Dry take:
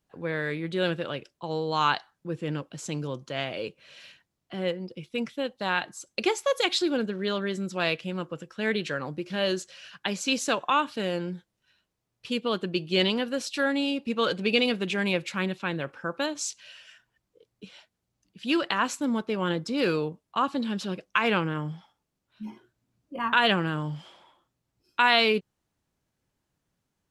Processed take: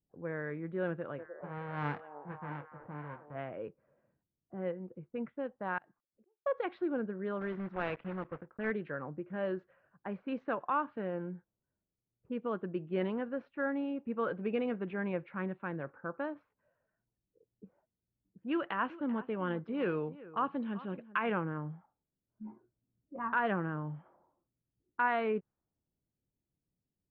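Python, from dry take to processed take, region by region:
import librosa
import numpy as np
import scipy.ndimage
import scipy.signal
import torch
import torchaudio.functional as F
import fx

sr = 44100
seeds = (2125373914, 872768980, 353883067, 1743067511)

y = fx.envelope_flatten(x, sr, power=0.1, at=(1.18, 3.34), fade=0.02)
y = fx.doubler(y, sr, ms=27.0, db=-11.0, at=(1.18, 3.34), fade=0.02)
y = fx.echo_stepped(y, sr, ms=303, hz=550.0, octaves=0.7, feedback_pct=70, wet_db=-5.5, at=(1.18, 3.34), fade=0.02)
y = fx.chain(y, sr, fx.auto_swell(attack_ms=440.0),
    fx.gate_flip(shuts_db=-36.0, range_db=-30), at=(5.78, 6.46))
y = fx.chain(y, sr, fx.block_float(bits=3),
    fx.high_shelf(hz=2400.0, db=9.0), at=(7.41, 8.73))
y = fx.chain(y, sr, fx.peak_eq(hz=3100.0, db=10.5, octaves=0.83),
    fx.echo_single(ms=388, db=-17.5), at=(18.51, 21.32))
y = scipy.signal.sosfilt(scipy.signal.butter(4, 1700.0, 'lowpass', fs=sr, output='sos'), y)
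y = fx.env_lowpass(y, sr, base_hz=430.0, full_db=-24.5)
y = y * 10.0 ** (-7.5 / 20.0)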